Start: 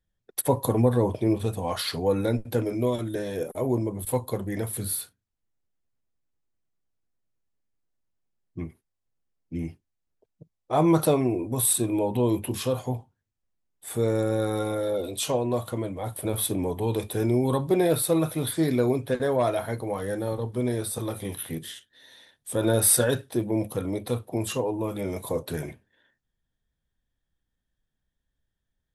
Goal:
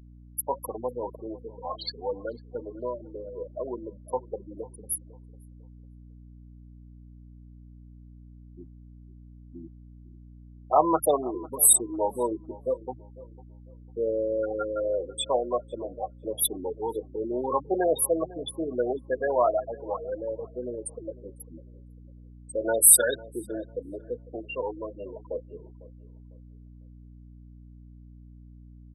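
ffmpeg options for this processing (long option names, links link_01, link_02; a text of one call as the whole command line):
ffmpeg -i in.wav -filter_complex "[0:a]afftfilt=real='re*gte(hypot(re,im),0.112)':imag='im*gte(hypot(re,im),0.112)':win_size=1024:overlap=0.75,highpass=750,dynaudnorm=framelen=480:gausssize=17:maxgain=8dB,aeval=exprs='val(0)+0.00398*(sin(2*PI*60*n/s)+sin(2*PI*2*60*n/s)/2+sin(2*PI*3*60*n/s)/3+sin(2*PI*4*60*n/s)/4+sin(2*PI*5*60*n/s)/5)':channel_layout=same,asplit=2[link_01][link_02];[link_02]adelay=500,lowpass=frequency=1300:poles=1,volume=-19dB,asplit=2[link_03][link_04];[link_04]adelay=500,lowpass=frequency=1300:poles=1,volume=0.31,asplit=2[link_05][link_06];[link_06]adelay=500,lowpass=frequency=1300:poles=1,volume=0.31[link_07];[link_03][link_05][link_07]amix=inputs=3:normalize=0[link_08];[link_01][link_08]amix=inputs=2:normalize=0" out.wav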